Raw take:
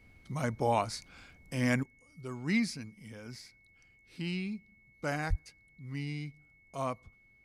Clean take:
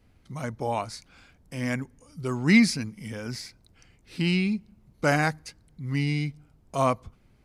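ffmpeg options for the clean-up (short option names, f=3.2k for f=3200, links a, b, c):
-filter_complex "[0:a]bandreject=f=2.2k:w=30,asplit=3[a][b][c];[a]afade=t=out:st=5.29:d=0.02[d];[b]highpass=f=140:w=0.5412,highpass=f=140:w=1.3066,afade=t=in:st=5.29:d=0.02,afade=t=out:st=5.41:d=0.02[e];[c]afade=t=in:st=5.41:d=0.02[f];[d][e][f]amix=inputs=3:normalize=0,asetnsamples=n=441:p=0,asendcmd='1.83 volume volume 11.5dB',volume=0dB"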